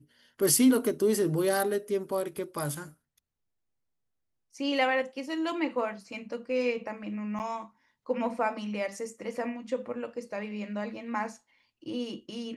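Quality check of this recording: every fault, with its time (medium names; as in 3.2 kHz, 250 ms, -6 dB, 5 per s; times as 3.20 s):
7.39–7.40 s: dropout 8.6 ms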